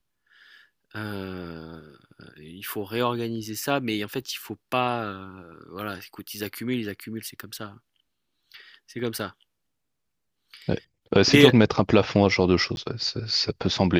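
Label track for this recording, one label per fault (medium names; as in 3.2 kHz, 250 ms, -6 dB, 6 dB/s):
12.760000	12.770000	dropout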